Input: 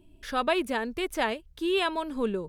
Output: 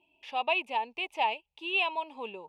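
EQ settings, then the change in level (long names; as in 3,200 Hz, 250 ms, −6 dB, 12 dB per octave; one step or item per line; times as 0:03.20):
pair of resonant band-passes 1,500 Hz, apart 1.6 octaves
+7.5 dB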